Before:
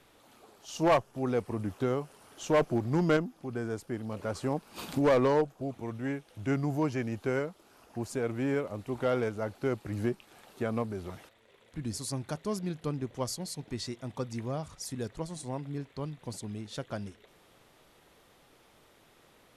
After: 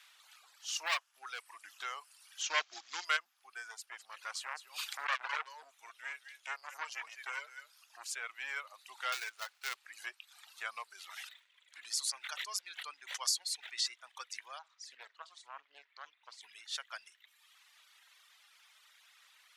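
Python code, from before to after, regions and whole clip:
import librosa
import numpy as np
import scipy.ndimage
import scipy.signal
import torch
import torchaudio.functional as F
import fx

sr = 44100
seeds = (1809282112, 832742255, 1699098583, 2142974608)

y = fx.chain(x, sr, fx.peak_eq(hz=220.0, db=-4.5, octaves=1.8),
    fx.clip_hard(threshold_db=-26.0), at=(0.86, 1.62))
y = fx.chain(y, sr, fx.small_body(hz=(280.0, 3200.0), ring_ms=40, db=9),
    fx.quant_companded(bits=6),
    fx.resample_bad(factor=3, down='none', up='filtered'), at=(2.42, 3.05))
y = fx.chain(y, sr, fx.echo_single(ms=207, db=-8.5),
    fx.transformer_sat(knee_hz=960.0), at=(3.71, 8.11))
y = fx.chain(y, sr, fx.dead_time(dead_ms=0.14),
    fx.hum_notches(base_hz=50, count=8), at=(9.12, 9.76))
y = fx.chain(y, sr, fx.low_shelf(hz=200.0, db=-4.0),
    fx.sustainer(db_per_s=57.0), at=(10.89, 13.88))
y = fx.chain(y, sr, fx.spacing_loss(db_at_10k=24),
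    fx.doubler(ms=49.0, db=-12),
    fx.doppler_dist(depth_ms=0.48), at=(14.59, 16.41))
y = scipy.signal.sosfilt(scipy.signal.bessel(4, 1900.0, 'highpass', norm='mag', fs=sr, output='sos'), y)
y = fx.dereverb_blind(y, sr, rt60_s=1.3)
y = fx.peak_eq(y, sr, hz=12000.0, db=-7.0, octaves=0.99)
y = y * librosa.db_to_amplitude(7.5)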